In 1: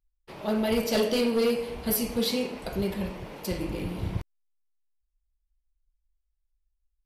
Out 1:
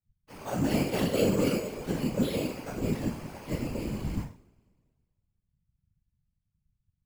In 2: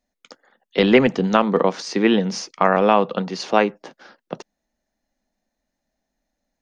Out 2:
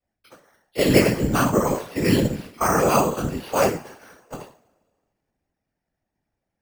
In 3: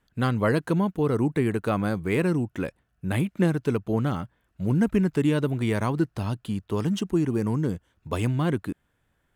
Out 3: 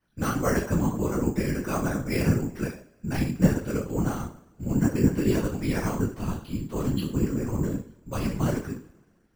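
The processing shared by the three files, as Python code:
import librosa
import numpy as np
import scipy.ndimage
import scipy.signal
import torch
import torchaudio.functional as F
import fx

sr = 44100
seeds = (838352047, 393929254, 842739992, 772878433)

y = fx.rev_double_slope(x, sr, seeds[0], early_s=0.37, late_s=1.7, knee_db=-26, drr_db=-9.5)
y = np.repeat(scipy.signal.resample_poly(y, 1, 6), 6)[:len(y)]
y = fx.whisperise(y, sr, seeds[1])
y = F.gain(torch.from_numpy(y), -11.5).numpy()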